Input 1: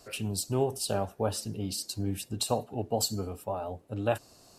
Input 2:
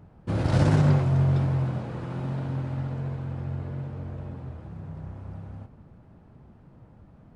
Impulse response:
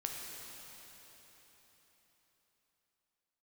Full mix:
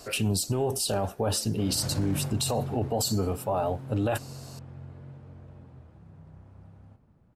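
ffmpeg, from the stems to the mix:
-filter_complex "[0:a]acontrast=90,volume=1.5dB[a];[1:a]highshelf=f=5.8k:g=7,adelay=1300,volume=-11.5dB[b];[a][b]amix=inputs=2:normalize=0,alimiter=limit=-18.5dB:level=0:latency=1:release=23"

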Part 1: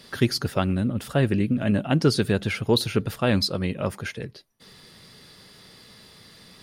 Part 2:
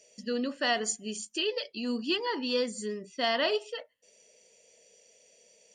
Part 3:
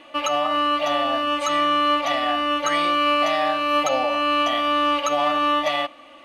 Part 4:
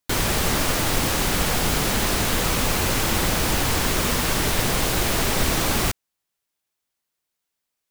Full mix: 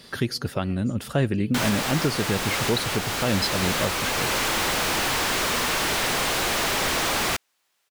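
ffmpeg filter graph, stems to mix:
-filter_complex "[0:a]volume=1.5dB[a];[1:a]acompressor=threshold=-32dB:ratio=6,volume=-14.5dB[b];[3:a]asplit=2[c][d];[d]highpass=f=720:p=1,volume=29dB,asoftclip=type=tanh:threshold=-7.5dB[e];[c][e]amix=inputs=2:normalize=0,lowpass=f=4.3k:p=1,volume=-6dB,adelay=1450,volume=-8dB[f];[a][b][f]amix=inputs=3:normalize=0,alimiter=limit=-12.5dB:level=0:latency=1:release=498"

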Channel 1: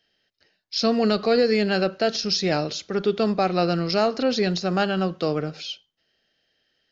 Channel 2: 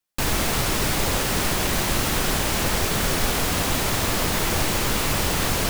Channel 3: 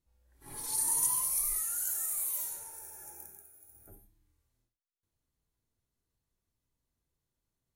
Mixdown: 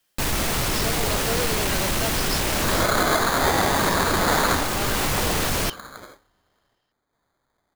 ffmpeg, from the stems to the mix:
-filter_complex "[0:a]highpass=400,volume=-8dB[a];[1:a]aeval=exprs='0.355*sin(PI/2*2.24*val(0)/0.355)':c=same,alimiter=limit=-19dB:level=0:latency=1,volume=0.5dB[b];[2:a]highshelf=f=4.5k:g=11,crystalizer=i=2:c=0,acrusher=samples=16:mix=1:aa=0.000001,adelay=2100,volume=-3.5dB[c];[a][b][c]amix=inputs=3:normalize=0,alimiter=limit=-10.5dB:level=0:latency=1:release=464"

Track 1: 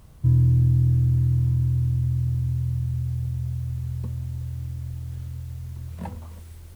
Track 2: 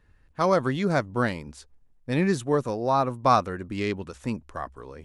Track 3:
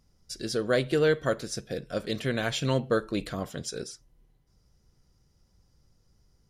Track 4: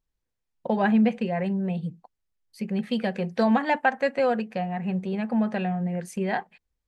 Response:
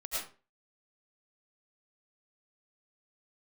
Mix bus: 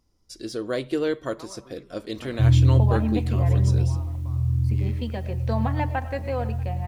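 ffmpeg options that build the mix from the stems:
-filter_complex "[0:a]equalizer=f=100:t=o:w=1.5:g=8,flanger=delay=20:depth=3.7:speed=1,adelay=2150,volume=-4dB,asplit=2[a][b];[b]volume=-8dB[c];[1:a]acompressor=threshold=-23dB:ratio=6,aeval=exprs='val(0)*pow(10,-24*if(lt(mod(0.82*n/s,1),2*abs(0.82)/1000),1-mod(0.82*n/s,1)/(2*abs(0.82)/1000),(mod(0.82*n/s,1)-2*abs(0.82)/1000)/(1-2*abs(0.82)/1000))/20)':c=same,adelay=1000,volume=-13dB,asplit=2[d][e];[e]volume=-8.5dB[f];[2:a]deesser=0.65,volume=-3dB[g];[3:a]adelay=2100,volume=-7.5dB,asplit=3[h][i][j];[i]volume=-15dB[k];[j]volume=-23dB[l];[4:a]atrim=start_sample=2205[m];[c][f][k]amix=inputs=3:normalize=0[n];[n][m]afir=irnorm=-1:irlink=0[o];[l]aecho=0:1:639:1[p];[a][d][g][h][o][p]amix=inputs=6:normalize=0,equalizer=f=160:t=o:w=0.33:g=-9,equalizer=f=315:t=o:w=0.33:g=8,equalizer=f=1k:t=o:w=0.33:g=5,equalizer=f=1.6k:t=o:w=0.33:g=-4"

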